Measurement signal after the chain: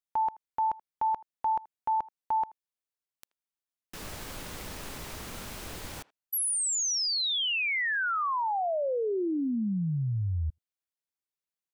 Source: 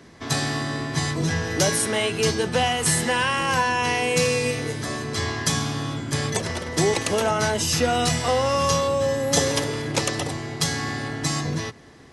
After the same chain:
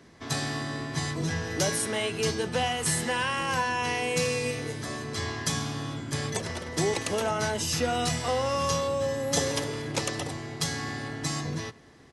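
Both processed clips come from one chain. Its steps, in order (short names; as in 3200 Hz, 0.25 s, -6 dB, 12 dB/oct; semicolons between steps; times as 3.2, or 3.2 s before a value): speakerphone echo 80 ms, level -22 dB; gain -6 dB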